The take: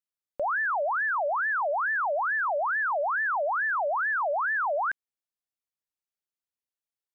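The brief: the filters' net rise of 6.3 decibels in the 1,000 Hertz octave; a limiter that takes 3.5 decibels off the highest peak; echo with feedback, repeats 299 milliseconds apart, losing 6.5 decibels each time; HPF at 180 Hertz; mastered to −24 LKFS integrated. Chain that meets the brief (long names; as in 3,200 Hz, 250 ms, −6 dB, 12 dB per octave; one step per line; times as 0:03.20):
high-pass filter 180 Hz
parametric band 1,000 Hz +8 dB
brickwall limiter −19.5 dBFS
repeating echo 299 ms, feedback 47%, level −6.5 dB
level −1.5 dB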